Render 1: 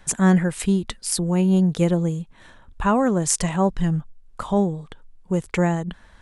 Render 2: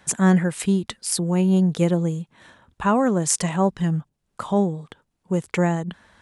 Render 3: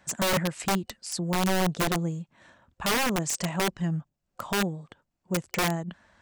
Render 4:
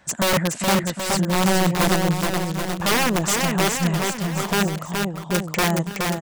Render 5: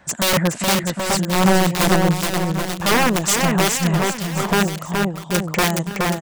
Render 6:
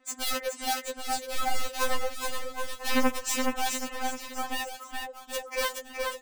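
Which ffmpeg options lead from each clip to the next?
-af "highpass=100"
-af "superequalizer=7b=0.708:8b=1.41:13b=0.708:16b=0.316,aeval=exprs='(mod(5.01*val(0)+1,2)-1)/5.01':c=same,volume=-6dB"
-af "aecho=1:1:420|777|1080|1338|1558:0.631|0.398|0.251|0.158|0.1,volume=5.5dB"
-filter_complex "[0:a]acrossover=split=2300[a][b];[a]aeval=exprs='val(0)*(1-0.5/2+0.5/2*cos(2*PI*2*n/s))':c=same[c];[b]aeval=exprs='val(0)*(1-0.5/2-0.5/2*cos(2*PI*2*n/s))':c=same[d];[c][d]amix=inputs=2:normalize=0,volume=5dB"
-af "afftfilt=real='re*3.46*eq(mod(b,12),0)':imag='im*3.46*eq(mod(b,12),0)':win_size=2048:overlap=0.75,volume=-9dB"

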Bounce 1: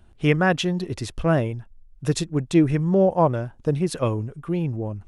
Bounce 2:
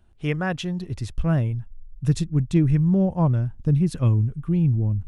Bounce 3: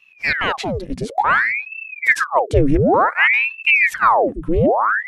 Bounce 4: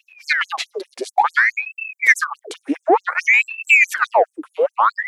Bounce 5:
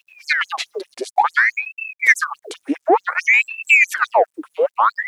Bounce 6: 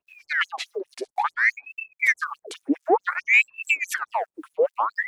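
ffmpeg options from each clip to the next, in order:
-af "asubboost=boost=10:cutoff=180,volume=-6.5dB"
-af "aeval=exprs='val(0)*sin(2*PI*1400*n/s+1400*0.9/0.56*sin(2*PI*0.56*n/s))':c=same,volume=7.5dB"
-af "acontrast=25,afftfilt=real='re*gte(b*sr/1024,240*pow(6300/240,0.5+0.5*sin(2*PI*4.7*pts/sr)))':imag='im*gte(b*sr/1024,240*pow(6300/240,0.5+0.5*sin(2*PI*4.7*pts/sr)))':win_size=1024:overlap=0.75,volume=-1dB"
-af "acrusher=bits=10:mix=0:aa=0.000001"
-filter_complex "[0:a]acrossover=split=950[a][b];[a]aeval=exprs='val(0)*(1-1/2+1/2*cos(2*PI*3.7*n/s))':c=same[c];[b]aeval=exprs='val(0)*(1-1/2-1/2*cos(2*PI*3.7*n/s))':c=same[d];[c][d]amix=inputs=2:normalize=0,volume=-1dB"

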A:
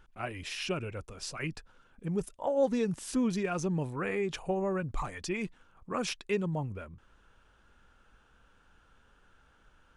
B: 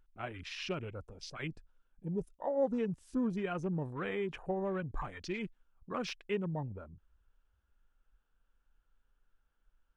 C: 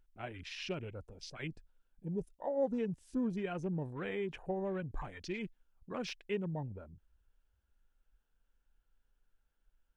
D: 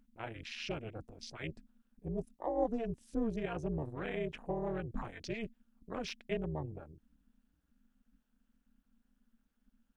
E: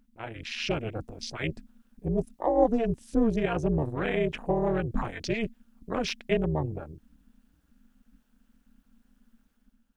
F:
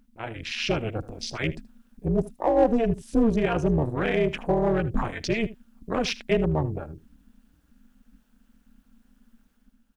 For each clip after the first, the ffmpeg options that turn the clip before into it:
-af "afwtdn=0.00631,deesser=0.85,volume=-4dB"
-af "equalizer=f=1.2k:t=o:w=0.49:g=-6.5,volume=-1.5dB"
-af "tremolo=f=230:d=0.919,volume=4dB"
-af "dynaudnorm=f=100:g=9:m=7dB,volume=3.5dB"
-filter_complex "[0:a]asplit=2[a][b];[b]asoftclip=type=hard:threshold=-20.5dB,volume=-5dB[c];[a][c]amix=inputs=2:normalize=0,aecho=1:1:77:0.126"

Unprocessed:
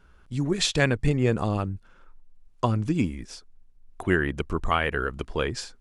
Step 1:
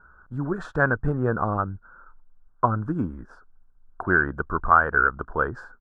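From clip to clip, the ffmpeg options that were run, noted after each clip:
-af "firequalizer=gain_entry='entry(340,0);entry(1500,15);entry(2100,-25)':delay=0.05:min_phase=1,volume=-2dB"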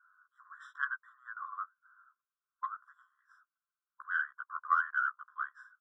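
-af "flanger=delay=9.5:depth=7:regen=-5:speed=0.82:shape=sinusoidal,aeval=exprs='0.562*(cos(1*acos(clip(val(0)/0.562,-1,1)))-cos(1*PI/2))+0.0891*(cos(2*acos(clip(val(0)/0.562,-1,1)))-cos(2*PI/2))+0.00447*(cos(8*acos(clip(val(0)/0.562,-1,1)))-cos(8*PI/2))':c=same,afftfilt=real='re*eq(mod(floor(b*sr/1024/1000),2),1)':imag='im*eq(mod(floor(b*sr/1024/1000),2),1)':win_size=1024:overlap=0.75,volume=-8.5dB"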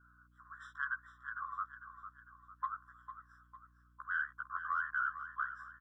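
-filter_complex "[0:a]alimiter=level_in=2.5dB:limit=-24dB:level=0:latency=1:release=28,volume=-2.5dB,aeval=exprs='val(0)+0.000447*(sin(2*PI*60*n/s)+sin(2*PI*2*60*n/s)/2+sin(2*PI*3*60*n/s)/3+sin(2*PI*4*60*n/s)/4+sin(2*PI*5*60*n/s)/5)':c=same,asplit=2[a][b];[b]aecho=0:1:452|904|1356|1808|2260:0.282|0.127|0.0571|0.0257|0.0116[c];[a][c]amix=inputs=2:normalize=0"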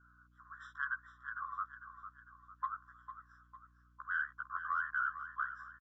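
-af "aresample=16000,aresample=44100"

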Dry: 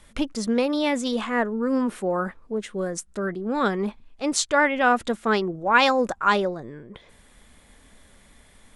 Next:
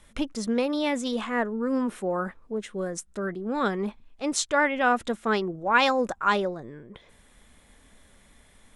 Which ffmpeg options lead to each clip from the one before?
-af "bandreject=f=4.6k:w=19,volume=-3dB"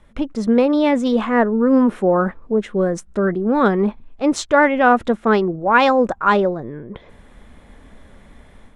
-filter_complex "[0:a]asplit=2[a][b];[b]adynamicsmooth=sensitivity=4.5:basefreq=6.8k,volume=-0.5dB[c];[a][c]amix=inputs=2:normalize=0,highshelf=f=2k:g=-11.5,dynaudnorm=f=240:g=3:m=7.5dB"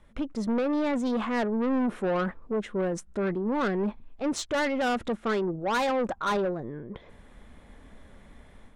-af "asoftclip=type=tanh:threshold=-17dB,volume=-6dB"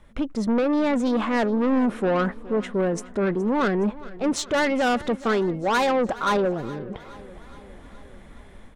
-af "aecho=1:1:419|838|1257|1676|2095:0.112|0.0673|0.0404|0.0242|0.0145,volume=5dB"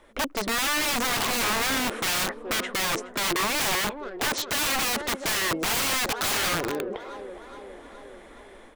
-filter_complex "[0:a]lowshelf=f=240:t=q:w=1.5:g=-13,acrossover=split=5600[a][b];[b]acompressor=threshold=-49dB:ratio=4:attack=1:release=60[c];[a][c]amix=inputs=2:normalize=0,aeval=exprs='(mod(15*val(0)+1,2)-1)/15':c=same,volume=3dB"

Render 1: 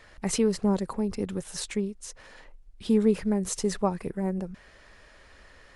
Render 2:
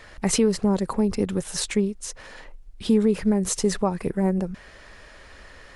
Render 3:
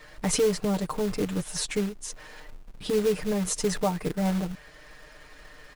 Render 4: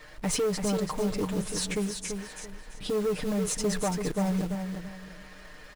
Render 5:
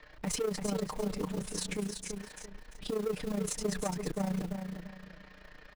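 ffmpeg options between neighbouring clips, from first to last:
-af "alimiter=limit=-18.5dB:level=0:latency=1:release=211,volume=7dB"
-filter_complex "[0:a]aecho=1:1:6.6:0.91,acrossover=split=1500[a][b];[a]acrusher=bits=3:mode=log:mix=0:aa=0.000001[c];[c][b]amix=inputs=2:normalize=0,volume=-5.5dB"
-filter_complex "[0:a]asoftclip=type=tanh:threshold=-22.5dB,asplit=2[a][b];[b]aecho=0:1:337|674|1011|1348:0.473|0.132|0.0371|0.0104[c];[a][c]amix=inputs=2:normalize=0"
-filter_complex "[0:a]tremolo=f=29:d=0.71,acrossover=split=160|1300|5400[a][b][c][d];[d]aeval=exprs='val(0)*gte(abs(val(0)),0.00126)':c=same[e];[a][b][c][e]amix=inputs=4:normalize=0,volume=-2.5dB"

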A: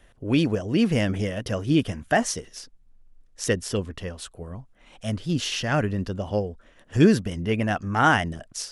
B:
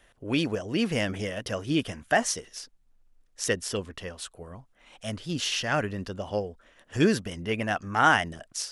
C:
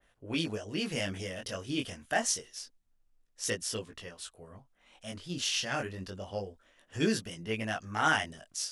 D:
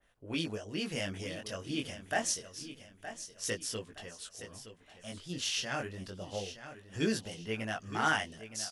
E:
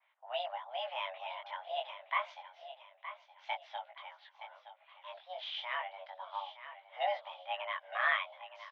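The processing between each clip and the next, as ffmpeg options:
-af "lowshelf=f=370:g=-9"
-af "flanger=delay=18:depth=4.5:speed=0.27,adynamicequalizer=threshold=0.00562:dfrequency=2600:dqfactor=0.7:tfrequency=2600:tqfactor=0.7:attack=5:release=100:ratio=0.375:range=3.5:mode=boostabove:tftype=highshelf,volume=-4.5dB"
-af "aecho=1:1:918|1836|2754|3672:0.251|0.0879|0.0308|0.0108,volume=-2.5dB"
-af "highpass=f=220:t=q:w=0.5412,highpass=f=220:t=q:w=1.307,lowpass=f=2.9k:t=q:w=0.5176,lowpass=f=2.9k:t=q:w=0.7071,lowpass=f=2.9k:t=q:w=1.932,afreqshift=380,volume=-1dB"

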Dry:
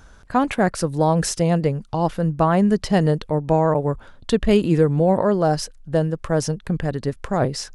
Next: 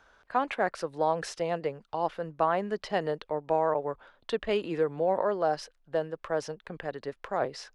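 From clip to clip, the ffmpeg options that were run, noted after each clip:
-filter_complex "[0:a]acrossover=split=380 4500:gain=0.126 1 0.158[a][b][c];[a][b][c]amix=inputs=3:normalize=0,volume=-6dB"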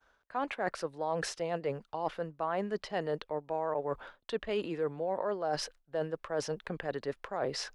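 -af "agate=range=-33dB:threshold=-52dB:ratio=3:detection=peak,areverse,acompressor=threshold=-38dB:ratio=4,areverse,volume=6dB"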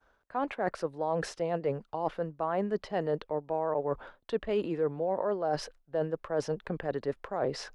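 -af "tiltshelf=f=1.3k:g=4.5"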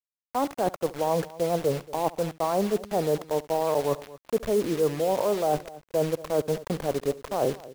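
-af "lowpass=f=1.2k:w=0.5412,lowpass=f=1.2k:w=1.3066,acrusher=bits=6:mix=0:aa=0.000001,aecho=1:1:70|229:0.1|0.112,volume=5.5dB"

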